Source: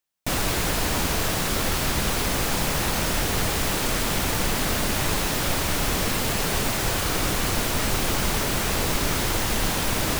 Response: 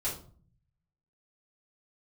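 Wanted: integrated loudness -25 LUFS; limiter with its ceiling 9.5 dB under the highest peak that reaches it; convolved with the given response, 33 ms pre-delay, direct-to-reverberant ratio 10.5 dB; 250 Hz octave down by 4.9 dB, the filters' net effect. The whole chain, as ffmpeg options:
-filter_complex "[0:a]equalizer=f=250:t=o:g=-7,alimiter=limit=0.0944:level=0:latency=1,asplit=2[s0][s1];[1:a]atrim=start_sample=2205,adelay=33[s2];[s1][s2]afir=irnorm=-1:irlink=0,volume=0.188[s3];[s0][s3]amix=inputs=2:normalize=0,volume=1.58"

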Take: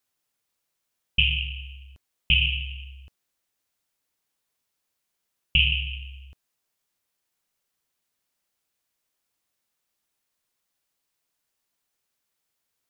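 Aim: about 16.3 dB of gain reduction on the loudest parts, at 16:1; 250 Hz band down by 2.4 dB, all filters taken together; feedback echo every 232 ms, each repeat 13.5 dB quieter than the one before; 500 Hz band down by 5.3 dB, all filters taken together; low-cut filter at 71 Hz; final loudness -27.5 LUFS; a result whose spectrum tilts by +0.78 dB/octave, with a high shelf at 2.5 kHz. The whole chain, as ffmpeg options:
-af "highpass=71,equalizer=f=250:t=o:g=-5,equalizer=f=500:t=o:g=-5.5,highshelf=f=2500:g=6,acompressor=threshold=0.0355:ratio=16,aecho=1:1:232|464:0.211|0.0444,volume=2.37"

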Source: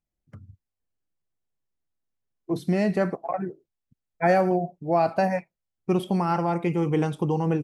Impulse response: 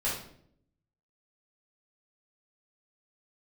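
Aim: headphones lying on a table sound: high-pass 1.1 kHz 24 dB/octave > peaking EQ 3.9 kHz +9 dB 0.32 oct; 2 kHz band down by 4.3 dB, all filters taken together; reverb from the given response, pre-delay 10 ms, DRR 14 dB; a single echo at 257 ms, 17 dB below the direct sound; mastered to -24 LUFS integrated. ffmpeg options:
-filter_complex "[0:a]equalizer=f=2000:t=o:g=-5.5,aecho=1:1:257:0.141,asplit=2[s0][s1];[1:a]atrim=start_sample=2205,adelay=10[s2];[s1][s2]afir=irnorm=-1:irlink=0,volume=0.0841[s3];[s0][s3]amix=inputs=2:normalize=0,highpass=f=1100:w=0.5412,highpass=f=1100:w=1.3066,equalizer=f=3900:t=o:w=0.32:g=9,volume=5.62"

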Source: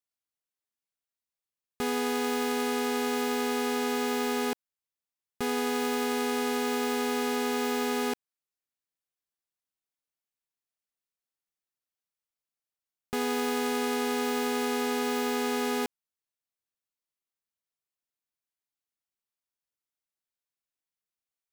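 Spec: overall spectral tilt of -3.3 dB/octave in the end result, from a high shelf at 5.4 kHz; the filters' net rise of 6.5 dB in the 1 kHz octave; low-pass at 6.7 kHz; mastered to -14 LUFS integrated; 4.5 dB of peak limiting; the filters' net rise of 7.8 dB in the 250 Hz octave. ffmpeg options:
-af "lowpass=6700,equalizer=f=250:t=o:g=7.5,equalizer=f=1000:t=o:g=8,highshelf=f=5400:g=4,volume=4.73,alimiter=limit=0.501:level=0:latency=1"

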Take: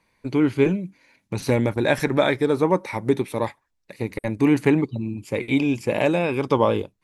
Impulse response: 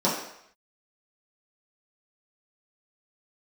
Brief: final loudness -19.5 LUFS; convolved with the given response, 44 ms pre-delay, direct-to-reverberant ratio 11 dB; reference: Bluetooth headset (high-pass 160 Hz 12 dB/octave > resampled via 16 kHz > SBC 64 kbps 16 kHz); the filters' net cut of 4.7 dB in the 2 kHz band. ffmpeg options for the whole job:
-filter_complex "[0:a]equalizer=f=2000:t=o:g=-6,asplit=2[s0][s1];[1:a]atrim=start_sample=2205,adelay=44[s2];[s1][s2]afir=irnorm=-1:irlink=0,volume=0.0531[s3];[s0][s3]amix=inputs=2:normalize=0,highpass=160,aresample=16000,aresample=44100,volume=1.41" -ar 16000 -c:a sbc -b:a 64k

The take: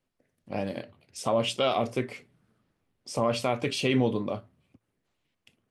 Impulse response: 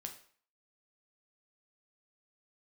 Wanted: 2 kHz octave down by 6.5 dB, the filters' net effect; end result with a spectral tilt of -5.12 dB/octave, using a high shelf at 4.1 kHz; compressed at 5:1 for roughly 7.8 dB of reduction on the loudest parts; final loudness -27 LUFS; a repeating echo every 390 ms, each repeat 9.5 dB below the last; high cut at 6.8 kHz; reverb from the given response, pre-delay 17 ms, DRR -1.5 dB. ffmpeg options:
-filter_complex "[0:a]lowpass=6800,equalizer=f=2000:t=o:g=-7,highshelf=f=4100:g=-5,acompressor=threshold=0.0355:ratio=5,aecho=1:1:390|780|1170|1560:0.335|0.111|0.0365|0.012,asplit=2[s0][s1];[1:a]atrim=start_sample=2205,adelay=17[s2];[s1][s2]afir=irnorm=-1:irlink=0,volume=1.78[s3];[s0][s3]amix=inputs=2:normalize=0,volume=1.78"

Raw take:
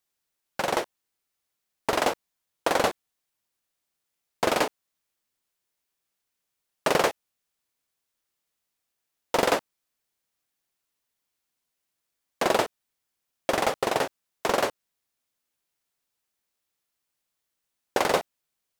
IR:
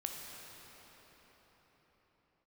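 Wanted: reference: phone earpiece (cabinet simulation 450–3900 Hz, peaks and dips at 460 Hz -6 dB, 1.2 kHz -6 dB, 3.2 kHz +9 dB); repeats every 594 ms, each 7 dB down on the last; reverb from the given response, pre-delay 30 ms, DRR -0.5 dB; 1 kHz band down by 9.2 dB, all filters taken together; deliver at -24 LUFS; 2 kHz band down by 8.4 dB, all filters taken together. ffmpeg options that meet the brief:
-filter_complex "[0:a]equalizer=f=1000:t=o:g=-8.5,equalizer=f=2000:t=o:g=-8.5,aecho=1:1:594|1188|1782|2376|2970:0.447|0.201|0.0905|0.0407|0.0183,asplit=2[s0][s1];[1:a]atrim=start_sample=2205,adelay=30[s2];[s1][s2]afir=irnorm=-1:irlink=0,volume=1[s3];[s0][s3]amix=inputs=2:normalize=0,highpass=450,equalizer=f=460:t=q:w=4:g=-6,equalizer=f=1200:t=q:w=4:g=-6,equalizer=f=3200:t=q:w=4:g=9,lowpass=f=3900:w=0.5412,lowpass=f=3900:w=1.3066,volume=2.82"

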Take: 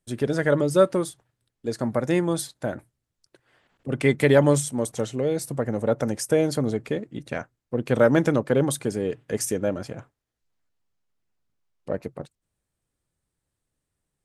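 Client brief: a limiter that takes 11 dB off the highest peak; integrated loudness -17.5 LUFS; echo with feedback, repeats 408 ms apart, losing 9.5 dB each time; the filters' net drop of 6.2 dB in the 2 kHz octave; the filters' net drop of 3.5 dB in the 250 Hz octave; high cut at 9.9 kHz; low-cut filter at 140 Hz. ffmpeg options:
-af "highpass=140,lowpass=9900,equalizer=f=250:t=o:g=-4,equalizer=f=2000:t=o:g=-8,alimiter=limit=0.133:level=0:latency=1,aecho=1:1:408|816|1224|1632:0.335|0.111|0.0365|0.012,volume=4.22"

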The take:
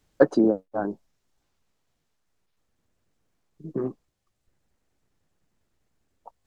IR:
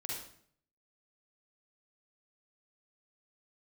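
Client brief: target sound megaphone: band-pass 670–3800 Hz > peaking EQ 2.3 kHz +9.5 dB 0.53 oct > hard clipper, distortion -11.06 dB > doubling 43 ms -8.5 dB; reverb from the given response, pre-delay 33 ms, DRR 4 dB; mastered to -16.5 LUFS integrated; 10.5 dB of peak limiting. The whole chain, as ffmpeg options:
-filter_complex "[0:a]alimiter=limit=0.211:level=0:latency=1,asplit=2[s0][s1];[1:a]atrim=start_sample=2205,adelay=33[s2];[s1][s2]afir=irnorm=-1:irlink=0,volume=0.596[s3];[s0][s3]amix=inputs=2:normalize=0,highpass=670,lowpass=3800,equalizer=f=2300:t=o:w=0.53:g=9.5,asoftclip=type=hard:threshold=0.0422,asplit=2[s4][s5];[s5]adelay=43,volume=0.376[s6];[s4][s6]amix=inputs=2:normalize=0,volume=11.2"

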